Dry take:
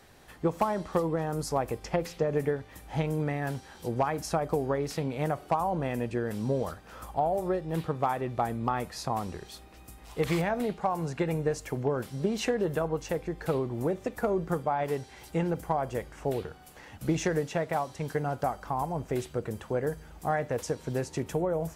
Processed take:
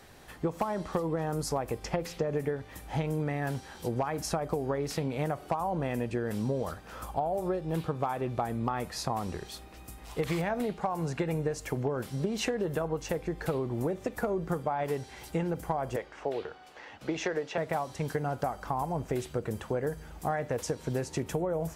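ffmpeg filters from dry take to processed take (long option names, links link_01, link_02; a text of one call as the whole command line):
ffmpeg -i in.wav -filter_complex "[0:a]asettb=1/sr,asplit=3[link_01][link_02][link_03];[link_01]atrim=end=7.024[link_04];[link_02]atrim=start=7.02:end=8.45,asetpts=PTS-STARTPTS,afade=type=in:duration=0.004:curve=qsin,afade=type=out:start_time=1.426:duration=0.004:curve=qsin,bandreject=frequency=1900:width=12[link_05];[link_03]atrim=start=8.446[link_06];[link_04][link_05]acrossfade=duration=0.004:curve1=hsin:curve2=qsin[link_07];[link_07][link_06]acrossfade=duration=0.004:curve1=qsin:curve2=hsin,asettb=1/sr,asplit=3[link_08][link_09][link_10];[link_08]atrim=end=15.964[link_11];[link_09]atrim=start=15.96:end=17.58,asetpts=PTS-STARTPTS,afade=type=in:duration=0.004:curve=qsin,afade=type=out:start_time=1.616:duration=0.004:curve=qsin,acrossover=split=310 5700:gain=0.178 1 0.0891[link_12][link_13][link_14];[link_12][link_13][link_14]amix=inputs=3:normalize=0[link_15];[link_10]atrim=start=17.576[link_16];[link_11][link_15]acrossfade=duration=0.004:curve1=hsin:curve2=qsin[link_17];[link_17][link_16]acrossfade=duration=0.004:curve1=qsin:curve2=hsin,acompressor=threshold=-30dB:ratio=4,volume=2.5dB" out.wav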